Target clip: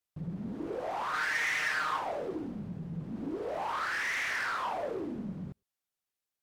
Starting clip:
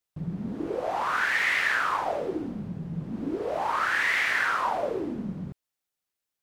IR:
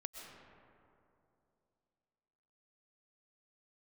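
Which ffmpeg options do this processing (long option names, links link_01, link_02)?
-filter_complex "[0:a]asoftclip=type=tanh:threshold=-24.5dB,asettb=1/sr,asplit=3[link_01][link_02][link_03];[link_01]atrim=end=1.134[link_04];[link_02]atrim=start=1.13:end=1.99,asetpts=PTS-STARTPTS,afade=type=in:duration=0.004:curve=qsin,afade=type=out:start_time=0.856:duration=0.004:curve=qsin,aecho=1:1:6.5:0.71,atrim=end_sample=37926[link_05];[link_03]atrim=start=1.986[link_06];[link_04][link_05]acrossfade=duration=0.004:curve1=hsin:curve2=qsin[link_07];[link_07][link_06]acrossfade=duration=0.004:curve1=qsin:curve2=hsin[link_08];[1:a]atrim=start_sample=2205,atrim=end_sample=3969,asetrate=37044,aresample=44100[link_09];[link_08][link_09]afir=irnorm=-1:irlink=0"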